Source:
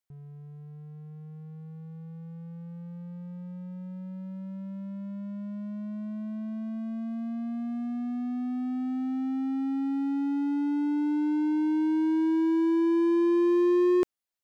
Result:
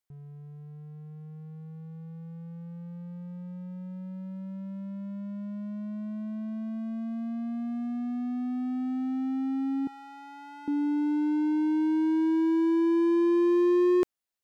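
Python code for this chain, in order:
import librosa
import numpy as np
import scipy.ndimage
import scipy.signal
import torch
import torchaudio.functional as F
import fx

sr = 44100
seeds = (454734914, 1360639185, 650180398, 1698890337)

y = fx.highpass(x, sr, hz=580.0, slope=24, at=(9.87, 10.68))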